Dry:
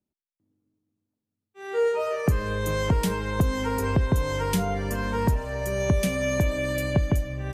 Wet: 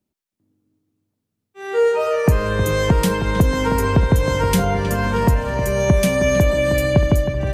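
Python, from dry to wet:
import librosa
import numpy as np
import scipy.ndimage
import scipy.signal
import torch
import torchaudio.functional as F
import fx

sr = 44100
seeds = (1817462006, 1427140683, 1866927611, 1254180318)

y = fx.echo_wet_lowpass(x, sr, ms=315, feedback_pct=53, hz=3900.0, wet_db=-9.5)
y = F.gain(torch.from_numpy(y), 7.0).numpy()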